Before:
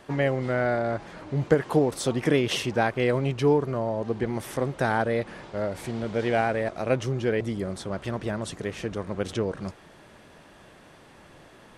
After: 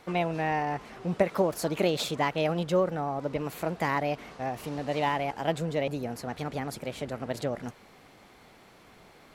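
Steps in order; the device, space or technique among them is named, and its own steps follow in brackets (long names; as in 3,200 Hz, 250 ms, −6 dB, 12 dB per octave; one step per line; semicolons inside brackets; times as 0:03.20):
nightcore (speed change +26%)
level −3.5 dB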